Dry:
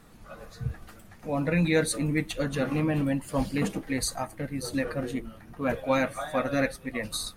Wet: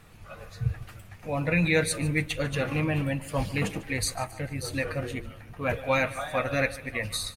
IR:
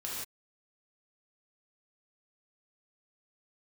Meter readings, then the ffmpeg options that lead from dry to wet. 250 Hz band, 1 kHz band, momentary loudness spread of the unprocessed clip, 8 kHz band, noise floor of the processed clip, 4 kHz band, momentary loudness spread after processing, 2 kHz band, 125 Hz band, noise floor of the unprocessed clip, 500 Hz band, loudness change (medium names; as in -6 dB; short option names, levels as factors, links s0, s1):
-3.5 dB, +0.5 dB, 12 LU, +0.5 dB, -48 dBFS, +1.5 dB, 14 LU, +4.0 dB, +2.0 dB, -51 dBFS, -0.5 dB, +0.5 dB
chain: -af "equalizer=f=100:t=o:w=0.67:g=9,equalizer=f=250:t=o:w=0.67:g=-7,equalizer=f=2500:t=o:w=0.67:g=7,aecho=1:1:147|294|441|588:0.126|0.0592|0.0278|0.0131"